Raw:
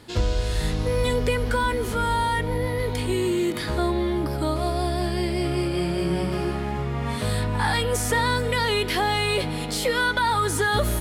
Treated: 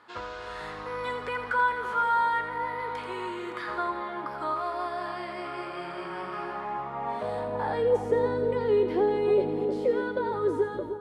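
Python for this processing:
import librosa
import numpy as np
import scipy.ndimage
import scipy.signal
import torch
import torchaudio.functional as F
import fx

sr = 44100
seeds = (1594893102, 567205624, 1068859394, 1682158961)

y = fx.fade_out_tail(x, sr, length_s=0.5)
y = fx.filter_sweep_bandpass(y, sr, from_hz=1200.0, to_hz=380.0, start_s=6.4, end_s=8.22, q=2.6)
y = fx.echo_split(y, sr, split_hz=1200.0, low_ms=308, high_ms=84, feedback_pct=52, wet_db=-8.0)
y = y * 10.0 ** (4.0 / 20.0)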